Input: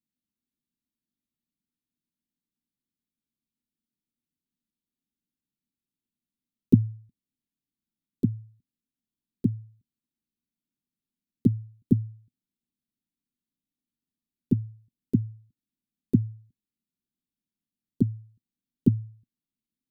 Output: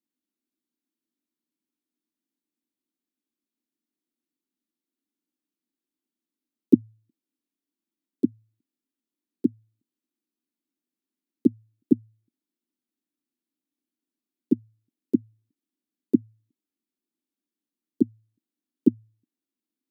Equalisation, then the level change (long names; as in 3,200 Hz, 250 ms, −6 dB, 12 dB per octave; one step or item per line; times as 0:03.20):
high-pass with resonance 310 Hz, resonance Q 3.6
−1.5 dB